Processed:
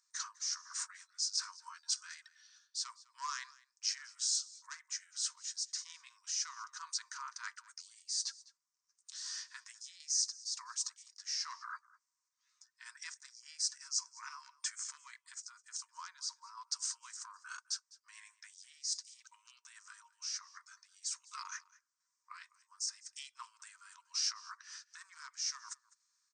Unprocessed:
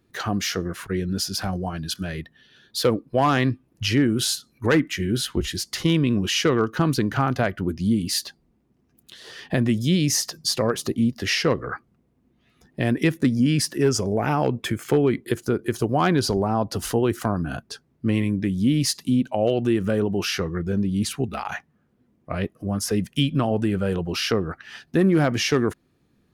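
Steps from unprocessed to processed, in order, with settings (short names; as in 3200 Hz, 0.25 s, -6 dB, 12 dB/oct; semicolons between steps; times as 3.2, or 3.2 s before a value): harmoniser -3 st -9 dB; resonant high shelf 4200 Hz +11.5 dB, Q 3; reverse; compressor 5:1, threshold -25 dBFS, peak gain reduction 20 dB; reverse; random-step tremolo; FFT band-pass 920–8900 Hz; on a send: echo 0.204 s -21.5 dB; on the sum: gain -7.5 dB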